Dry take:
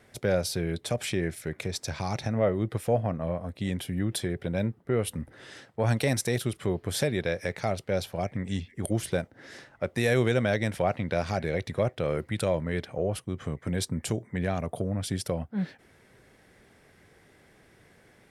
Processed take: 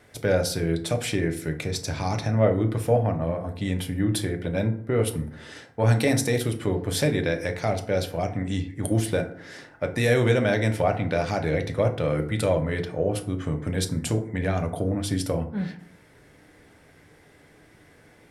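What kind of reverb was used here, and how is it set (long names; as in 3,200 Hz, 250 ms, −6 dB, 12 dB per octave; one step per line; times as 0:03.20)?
feedback delay network reverb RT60 0.6 s, low-frequency decay 1.2×, high-frequency decay 0.5×, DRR 4.5 dB
level +2.5 dB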